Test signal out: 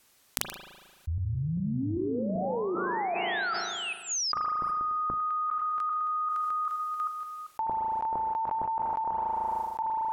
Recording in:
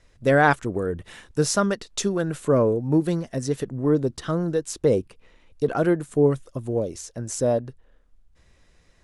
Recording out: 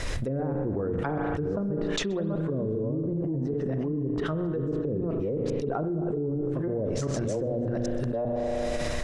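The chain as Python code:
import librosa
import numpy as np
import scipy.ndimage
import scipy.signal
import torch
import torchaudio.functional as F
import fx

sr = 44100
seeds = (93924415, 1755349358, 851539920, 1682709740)

p1 = fx.reverse_delay(x, sr, ms=393, wet_db=-3.5)
p2 = fx.env_lowpass_down(p1, sr, base_hz=330.0, full_db=-17.0)
p3 = fx.hum_notches(p2, sr, base_hz=60, count=4)
p4 = p3 + fx.echo_single(p3, sr, ms=128, db=-23.5, dry=0)
p5 = fx.rev_spring(p4, sr, rt60_s=1.5, pass_ms=(37,), chirp_ms=30, drr_db=10.0)
p6 = fx.env_flatten(p5, sr, amount_pct=100)
y = p6 * 10.0 ** (-12.0 / 20.0)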